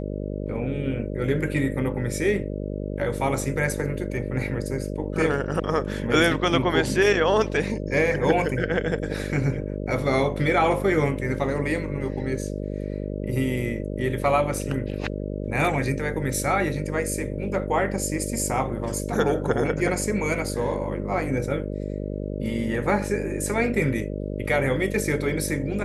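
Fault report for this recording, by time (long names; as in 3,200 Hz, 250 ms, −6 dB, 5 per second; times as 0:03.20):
mains buzz 50 Hz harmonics 12 −30 dBFS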